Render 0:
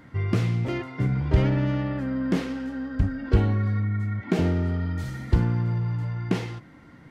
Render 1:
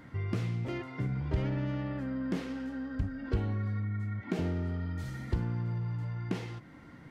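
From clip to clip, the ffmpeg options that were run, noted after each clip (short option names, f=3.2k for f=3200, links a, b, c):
-af "acompressor=threshold=-40dB:ratio=1.5,volume=-2dB"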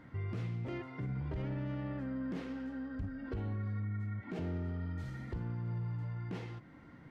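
-af "highshelf=f=5k:g=-10.5,alimiter=level_in=3.5dB:limit=-24dB:level=0:latency=1:release=28,volume=-3.5dB,volume=-3.5dB"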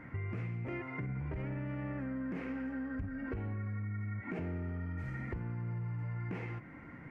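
-af "highshelf=f=2.9k:t=q:w=3:g=-7.5,acompressor=threshold=-40dB:ratio=6,volume=4.5dB"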